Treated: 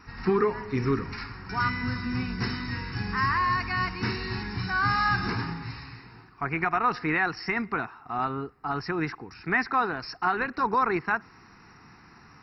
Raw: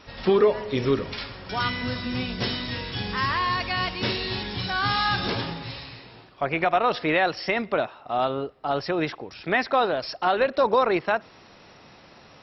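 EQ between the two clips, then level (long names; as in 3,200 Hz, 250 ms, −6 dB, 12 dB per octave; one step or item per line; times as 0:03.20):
phaser with its sweep stopped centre 1,400 Hz, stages 4
+1.5 dB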